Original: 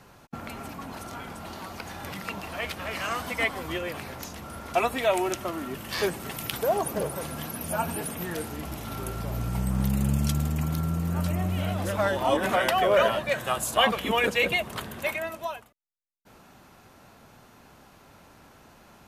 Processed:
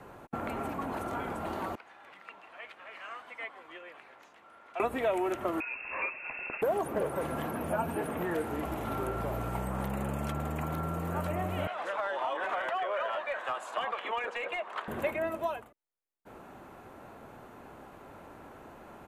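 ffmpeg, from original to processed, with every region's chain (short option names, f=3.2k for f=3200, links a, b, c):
-filter_complex "[0:a]asettb=1/sr,asplit=3[a][b][c];[a]atrim=end=1.754[d];[b]atrim=start=1.75:end=4.8,asetpts=PTS-STARTPTS,afade=t=in:d=0.004:c=qsin,afade=t=out:st=3.046:d=0.004:c=qsin,lowpass=2.6k,aderivative[e];[c]atrim=start=4.796[f];[d][e]acrossfade=d=0.004:c1=hsin:c2=qsin[g];[g][f]acrossfade=d=0.004:c1=qsin:c2=hsin,asettb=1/sr,asplit=3[h][i][j];[h]atrim=end=5.604[k];[i]atrim=start=5.6:end=6.62,asetpts=PTS-STARTPTS,afade=t=in:d=0.004:c=qsin,afade=t=out:st=1.016:d=0.004:c=qsin,tiltshelf=f=760:g=9,acrusher=bits=9:mode=log:mix=0:aa=0.000001,lowpass=f=2.4k:t=q:w=0.5098,lowpass=f=2.4k:t=q:w=0.6013,lowpass=f=2.4k:t=q:w=0.9,lowpass=f=2.4k:t=q:w=2.563,afreqshift=-2800[l];[j]atrim=start=6.616[m];[k][l]acrossfade=d=0.004:c1=hsin:c2=qsin[n];[n][m]acrossfade=d=0.004:c1=qsin:c2=hsin,asettb=1/sr,asplit=3[o][p][q];[o]atrim=end=11.674[r];[p]atrim=start=11.67:end=14.88,asetpts=PTS-STARTPTS,afade=t=in:d=0.004:c=qsin,afade=t=out:st=3.206:d=0.004:c=qsin,acompressor=threshold=-23dB:ratio=6:attack=3.2:release=140:knee=1:detection=peak,asuperpass=centerf=2200:order=4:qfactor=0.5,asoftclip=type=hard:threshold=-25dB[s];[q]atrim=start=14.876[t];[r][s]acrossfade=d=0.004:c1=hsin:c2=qsin[u];[u][t]acrossfade=d=0.004:c1=qsin:c2=hsin,firequalizer=gain_entry='entry(180,0);entry(330,7);entry(5200,-13);entry(7400,-6)':delay=0.05:min_phase=1,acrossover=split=450|1300|2800[v][w][x][y];[v]acompressor=threshold=-35dB:ratio=4[z];[w]acompressor=threshold=-34dB:ratio=4[aa];[x]acompressor=threshold=-41dB:ratio=4[ab];[y]acompressor=threshold=-51dB:ratio=4[ac];[z][aa][ab][ac]amix=inputs=4:normalize=0"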